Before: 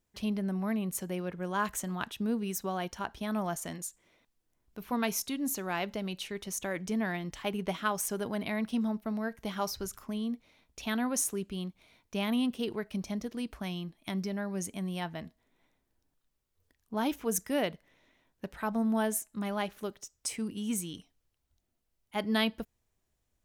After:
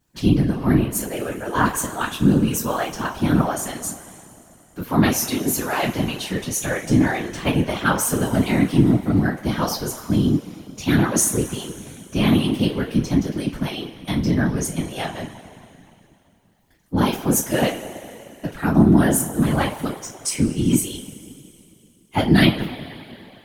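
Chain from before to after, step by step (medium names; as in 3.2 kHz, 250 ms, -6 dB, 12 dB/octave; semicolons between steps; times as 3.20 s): two-slope reverb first 0.23 s, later 2.9 s, from -22 dB, DRR -7.5 dB; whisper effect; trim +3 dB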